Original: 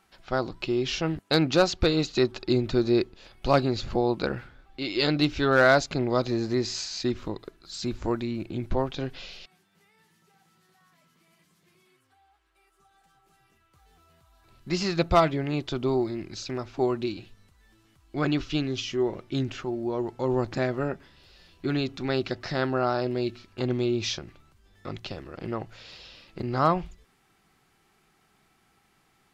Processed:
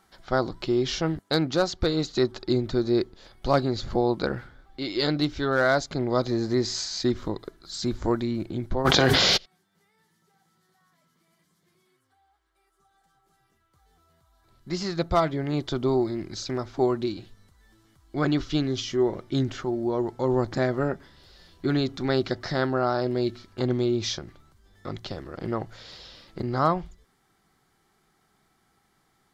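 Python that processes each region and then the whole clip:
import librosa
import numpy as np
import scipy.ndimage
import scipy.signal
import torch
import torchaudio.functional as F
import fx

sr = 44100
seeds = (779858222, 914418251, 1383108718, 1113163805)

y = fx.spec_clip(x, sr, under_db=15, at=(8.84, 9.36), fade=0.02)
y = fx.highpass(y, sr, hz=64.0, slope=12, at=(8.84, 9.36), fade=0.02)
y = fx.env_flatten(y, sr, amount_pct=100, at=(8.84, 9.36), fade=0.02)
y = fx.peak_eq(y, sr, hz=2600.0, db=-11.5, octaves=0.28)
y = fx.rider(y, sr, range_db=3, speed_s=0.5)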